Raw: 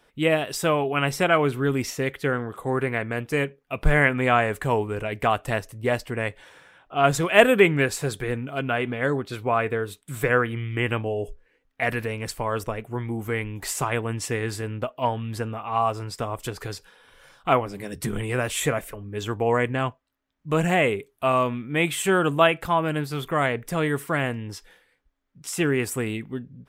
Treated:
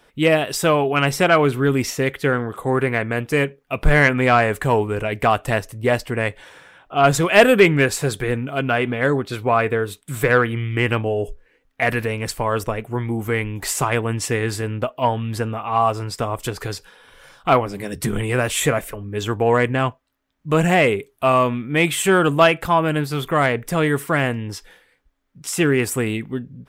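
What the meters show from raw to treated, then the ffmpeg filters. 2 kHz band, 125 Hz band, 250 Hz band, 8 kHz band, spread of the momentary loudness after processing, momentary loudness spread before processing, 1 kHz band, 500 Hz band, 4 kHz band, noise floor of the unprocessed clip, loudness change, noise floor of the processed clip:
+4.5 dB, +5.5 dB, +5.5 dB, +5.5 dB, 10 LU, 11 LU, +5.0 dB, +5.0 dB, +5.0 dB, −66 dBFS, +5.0 dB, −61 dBFS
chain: -af "acontrast=71,volume=-1dB"

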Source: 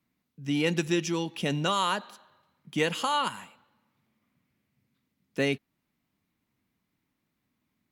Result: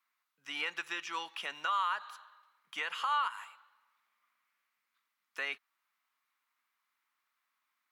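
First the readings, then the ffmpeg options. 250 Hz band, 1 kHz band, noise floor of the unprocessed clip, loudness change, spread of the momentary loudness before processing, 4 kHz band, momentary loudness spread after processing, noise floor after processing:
−27.0 dB, −3.5 dB, −80 dBFS, −7.0 dB, 10 LU, −7.5 dB, 17 LU, −84 dBFS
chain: -filter_complex "[0:a]acrossover=split=3600[link_01][link_02];[link_02]acompressor=threshold=-49dB:ratio=4:attack=1:release=60[link_03];[link_01][link_03]amix=inputs=2:normalize=0,highpass=frequency=1200:width_type=q:width=2.6,alimiter=limit=-21.5dB:level=0:latency=1:release=242,volume=-2dB"

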